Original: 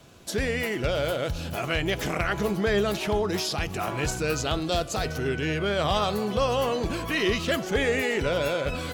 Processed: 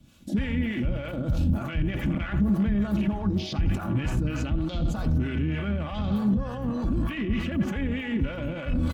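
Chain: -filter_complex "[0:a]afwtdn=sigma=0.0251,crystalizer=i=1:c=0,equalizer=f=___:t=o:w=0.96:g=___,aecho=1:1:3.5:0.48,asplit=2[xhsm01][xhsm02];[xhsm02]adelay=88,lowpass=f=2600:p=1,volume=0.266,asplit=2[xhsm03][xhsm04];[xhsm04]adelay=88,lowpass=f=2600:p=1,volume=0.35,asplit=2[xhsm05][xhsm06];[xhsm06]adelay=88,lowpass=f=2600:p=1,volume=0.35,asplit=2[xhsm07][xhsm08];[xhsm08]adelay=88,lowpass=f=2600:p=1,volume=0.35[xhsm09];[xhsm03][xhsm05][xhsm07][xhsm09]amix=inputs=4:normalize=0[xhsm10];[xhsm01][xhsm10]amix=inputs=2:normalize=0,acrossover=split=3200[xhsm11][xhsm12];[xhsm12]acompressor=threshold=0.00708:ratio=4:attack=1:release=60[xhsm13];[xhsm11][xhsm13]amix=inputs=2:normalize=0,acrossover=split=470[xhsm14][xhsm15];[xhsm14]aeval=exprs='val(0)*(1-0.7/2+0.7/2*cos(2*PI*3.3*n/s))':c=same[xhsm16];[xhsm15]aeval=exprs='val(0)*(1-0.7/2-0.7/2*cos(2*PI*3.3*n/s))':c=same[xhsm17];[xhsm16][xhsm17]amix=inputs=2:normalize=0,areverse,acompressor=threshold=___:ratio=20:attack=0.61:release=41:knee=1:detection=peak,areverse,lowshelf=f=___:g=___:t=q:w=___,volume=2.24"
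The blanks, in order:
3100, 5, 0.0141, 300, 12.5, 1.5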